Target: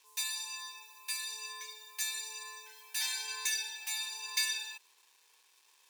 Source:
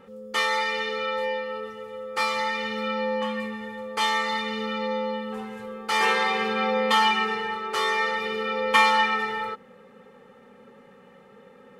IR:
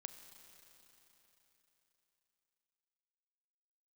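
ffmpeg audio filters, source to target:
-af "acrusher=bits=7:mix=0:aa=0.5,aderivative,asetrate=88200,aresample=44100"

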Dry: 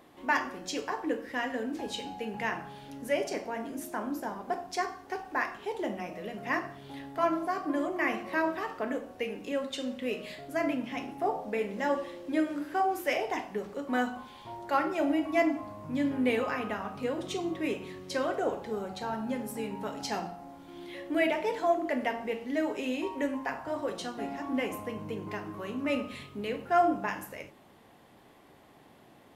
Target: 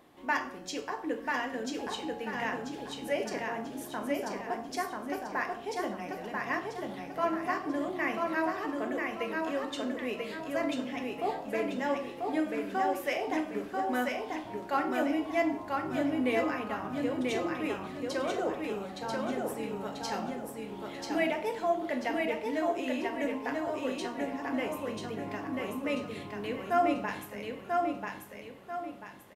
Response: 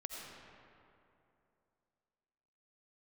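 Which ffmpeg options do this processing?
-af "aecho=1:1:989|1978|2967|3956|4945:0.708|0.269|0.102|0.0388|0.0148,volume=-2.5dB"

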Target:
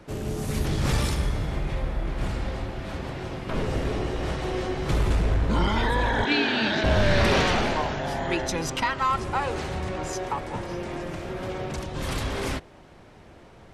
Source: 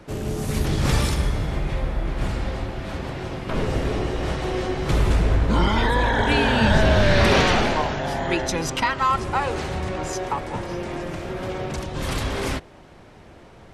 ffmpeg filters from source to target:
-filter_complex "[0:a]aeval=exprs='0.473*(cos(1*acos(clip(val(0)/0.473,-1,1)))-cos(1*PI/2))+0.0531*(cos(2*acos(clip(val(0)/0.473,-1,1)))-cos(2*PI/2))+0.0188*(cos(5*acos(clip(val(0)/0.473,-1,1)))-cos(5*PI/2))':c=same,asettb=1/sr,asplit=3[a][b][c];[a]atrim=end=6.254[d];[b]atrim=start=6.25:end=6.84,asetpts=PTS-STARTPTS,afade=t=in:d=0.004:c=qsin,afade=t=out:st=0.586:d=0.004:c=qsin,highpass=250,equalizer=f=320:t=q:w=4:g=9,equalizer=f=520:t=q:w=4:g=-9,equalizer=f=960:t=q:w=4:g=-7,equalizer=f=2.3k:t=q:w=4:g=4,equalizer=f=4k:t=q:w=4:g=7,lowpass=f=6.2k:w=0.5412,lowpass=f=6.2k:w=1.3066[e];[c]atrim=start=6.836[f];[d][e]acrossfade=d=0.004:c1=hsin:c2=qsin[g];[g][f]acrossfade=d=0.004:c1=qsin:c2=hsin,volume=-4.5dB"

